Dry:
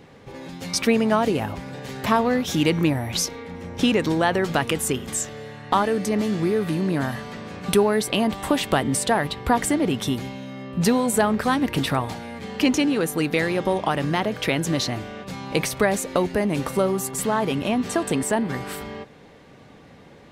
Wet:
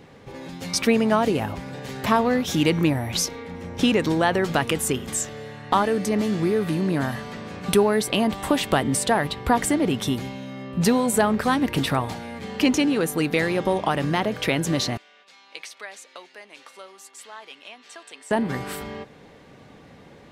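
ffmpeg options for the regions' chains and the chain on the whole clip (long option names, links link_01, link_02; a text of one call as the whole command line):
ffmpeg -i in.wav -filter_complex "[0:a]asettb=1/sr,asplit=3[link_01][link_02][link_03];[link_01]atrim=end=14.974[link_04];[link_02]atrim=start=14.97:end=18.31,asetpts=PTS-STARTPTS,afade=type=in:duration=0.004:curve=qsin,afade=type=out:start_time=3.336:duration=0.004:curve=qsin,highpass=290,lowpass=3600,aderivative[link_05];[link_03]atrim=start=18.306[link_06];[link_04][link_05]acrossfade=duration=0.004:curve1=hsin:curve2=qsin[link_07];[link_07][link_06]acrossfade=duration=0.004:curve1=qsin:curve2=hsin" out.wav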